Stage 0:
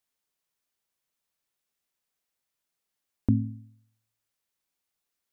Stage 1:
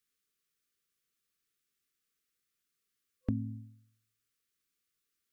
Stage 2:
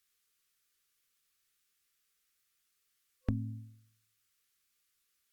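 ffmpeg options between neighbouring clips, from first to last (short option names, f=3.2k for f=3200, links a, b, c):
-filter_complex "[0:a]afftfilt=real='re*(1-between(b*sr/4096,510,1100))':imag='im*(1-between(b*sr/4096,510,1100))':win_size=4096:overlap=0.75,acrossover=split=480[a][b];[a]acompressor=threshold=-30dB:ratio=6[c];[c][b]amix=inputs=2:normalize=0"
-af "equalizer=f=240:w=0.44:g=-9.5,volume=6.5dB" -ar 48000 -c:a libopus -b:a 64k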